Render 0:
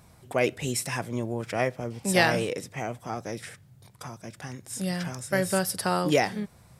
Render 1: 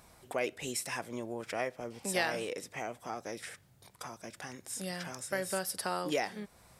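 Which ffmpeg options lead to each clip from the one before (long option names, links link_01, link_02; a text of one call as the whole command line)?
ffmpeg -i in.wav -af "equalizer=frequency=120:width=0.82:gain=-12,acompressor=threshold=-43dB:ratio=1.5" out.wav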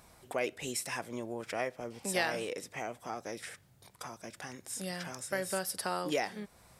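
ffmpeg -i in.wav -af anull out.wav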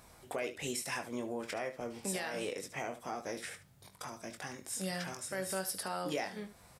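ffmpeg -i in.wav -filter_complex "[0:a]alimiter=level_in=2dB:limit=-24dB:level=0:latency=1:release=141,volume=-2dB,asplit=2[link_01][link_02];[link_02]aecho=0:1:21|73:0.398|0.224[link_03];[link_01][link_03]amix=inputs=2:normalize=0" out.wav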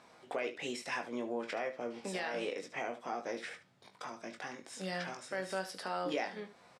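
ffmpeg -i in.wav -filter_complex "[0:a]highpass=230,lowpass=4400,asplit=2[link_01][link_02];[link_02]adelay=17,volume=-12dB[link_03];[link_01][link_03]amix=inputs=2:normalize=0,volume=1dB" out.wav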